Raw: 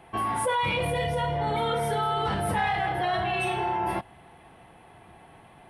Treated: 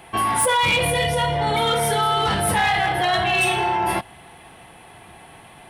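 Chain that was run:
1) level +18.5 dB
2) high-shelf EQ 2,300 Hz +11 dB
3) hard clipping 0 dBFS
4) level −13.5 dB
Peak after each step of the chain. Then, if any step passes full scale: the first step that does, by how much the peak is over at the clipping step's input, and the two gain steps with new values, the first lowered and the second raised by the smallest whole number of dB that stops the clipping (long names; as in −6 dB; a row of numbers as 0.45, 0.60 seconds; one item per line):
+3.5, +6.5, 0.0, −13.5 dBFS
step 1, 6.5 dB
step 1 +11.5 dB, step 4 −6.5 dB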